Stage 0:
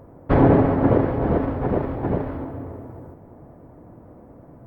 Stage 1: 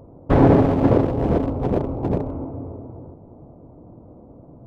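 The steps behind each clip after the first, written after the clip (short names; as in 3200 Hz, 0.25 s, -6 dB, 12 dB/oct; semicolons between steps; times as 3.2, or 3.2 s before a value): Wiener smoothing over 25 samples; gain +1.5 dB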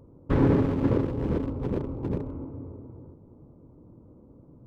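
bell 700 Hz -13.5 dB 0.49 oct; gain -6.5 dB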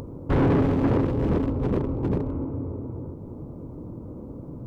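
in parallel at -2 dB: upward compressor, threshold -27 dBFS; on the sum: soft clip -17.5 dBFS, distortion -9 dB; gain +1.5 dB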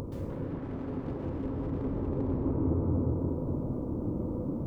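negative-ratio compressor -31 dBFS, ratio -1; plate-style reverb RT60 2.2 s, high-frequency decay 0.35×, pre-delay 0.115 s, DRR -2.5 dB; gain -6 dB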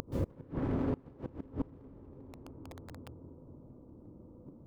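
wrapped overs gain 19.5 dB; flipped gate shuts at -26 dBFS, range -25 dB; gain +4.5 dB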